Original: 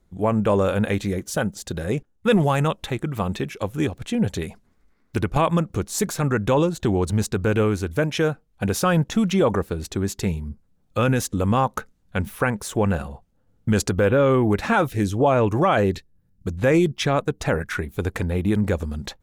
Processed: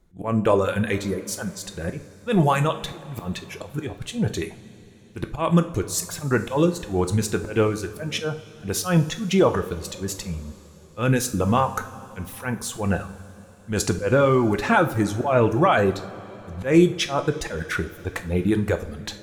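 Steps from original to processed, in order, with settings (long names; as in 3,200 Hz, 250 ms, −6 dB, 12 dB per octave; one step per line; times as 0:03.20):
volume swells 144 ms
reverb reduction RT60 1.5 s
coupled-rooms reverb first 0.41 s, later 4.2 s, from −18 dB, DRR 6.5 dB
level +1.5 dB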